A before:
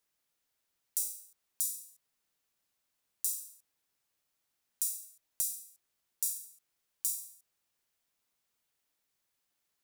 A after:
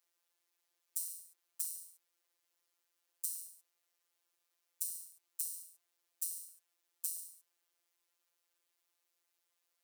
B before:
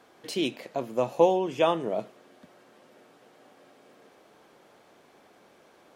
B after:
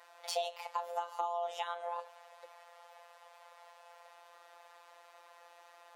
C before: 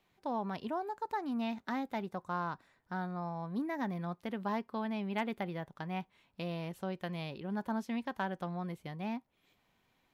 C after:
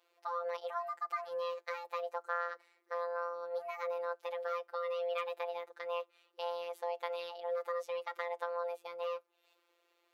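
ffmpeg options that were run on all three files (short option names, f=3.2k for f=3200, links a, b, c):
-af "acompressor=threshold=-32dB:ratio=12,afreqshift=320,afftfilt=real='hypot(re,im)*cos(PI*b)':imag='0':win_size=1024:overlap=0.75,volume=2.5dB"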